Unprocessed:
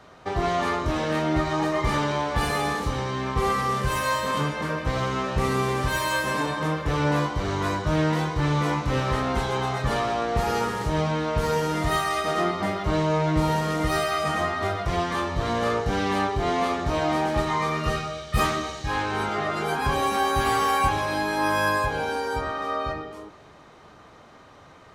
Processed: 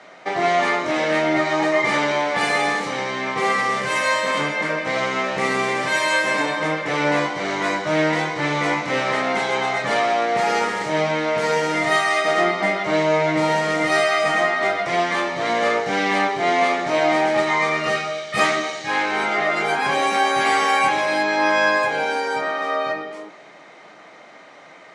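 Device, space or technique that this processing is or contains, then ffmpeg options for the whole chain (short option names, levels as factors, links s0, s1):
television speaker: -filter_complex "[0:a]asettb=1/sr,asplit=3[s0][s1][s2];[s0]atrim=end=21.234[s3];[s1]atrim=start=21.23:end=21.83,asetpts=PTS-STARTPTS,afade=t=in:d=0.004:c=qsin,afade=t=out:st=0.596:d=0.004:c=qsin,lowpass=f=6800:w=0.5412,lowpass=f=6800:w=1.3066[s4];[s2]atrim=start=21.826[s5];[s3][s4]acrossfade=d=0.004:c1=hsin:c2=qsin[s6];[s6][s5]acrossfade=d=0.004:c1=qsin:c2=hsin,highpass=f=200:w=0.5412,highpass=f=200:w=1.3066,equalizer=f=240:t=q:w=4:g=-6,equalizer=f=410:t=q:w=4:g=-4,equalizer=f=650:t=q:w=4:g=4,equalizer=f=1100:t=q:w=4:g=-4,equalizer=f=2100:t=q:w=4:g=10,lowpass=f=8900:w=0.5412,lowpass=f=8900:w=1.3066,volume=1.78"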